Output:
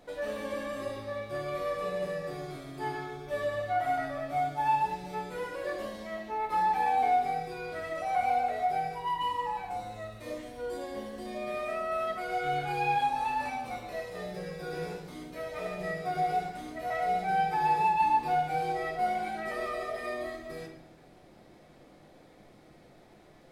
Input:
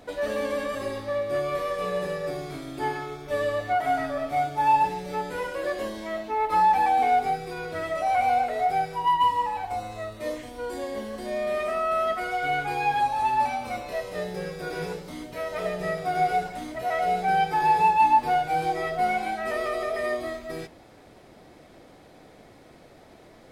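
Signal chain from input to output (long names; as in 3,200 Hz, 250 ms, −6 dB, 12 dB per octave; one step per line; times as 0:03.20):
0:12.27–0:13.50: double-tracking delay 27 ms −4 dB
rectangular room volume 280 cubic metres, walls mixed, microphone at 0.87 metres
level −8 dB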